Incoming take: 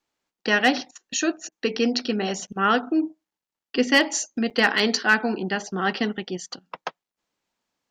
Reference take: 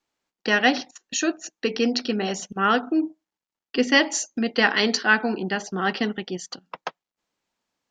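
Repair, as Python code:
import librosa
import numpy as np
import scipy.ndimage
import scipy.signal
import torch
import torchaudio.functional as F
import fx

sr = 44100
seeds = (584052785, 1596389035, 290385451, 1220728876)

y = fx.fix_declip(x, sr, threshold_db=-8.0)
y = fx.fix_interpolate(y, sr, at_s=(2.47, 4.5), length_ms=7.0)
y = fx.fix_interpolate(y, sr, at_s=(1.49,), length_ms=27.0)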